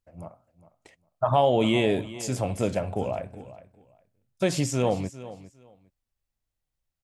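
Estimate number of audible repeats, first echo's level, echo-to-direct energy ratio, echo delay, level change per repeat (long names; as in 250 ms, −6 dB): 2, −16.0 dB, −16.0 dB, 405 ms, −14.5 dB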